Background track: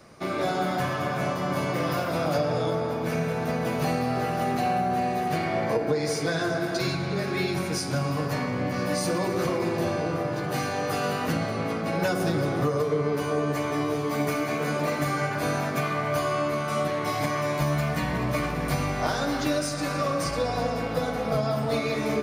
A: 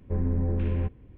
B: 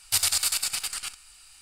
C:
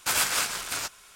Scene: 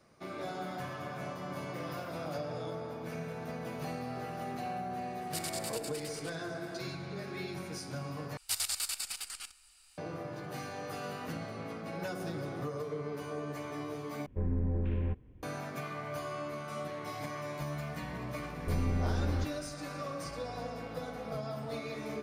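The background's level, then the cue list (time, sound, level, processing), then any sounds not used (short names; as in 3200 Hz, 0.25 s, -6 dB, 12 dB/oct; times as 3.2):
background track -13 dB
5.21 add B -16.5 dB
8.37 replace with B -10 dB + bell 120 Hz -14.5 dB 0.39 oct
14.26 replace with A -5.5 dB
18.57 add A -5.5 dB
not used: C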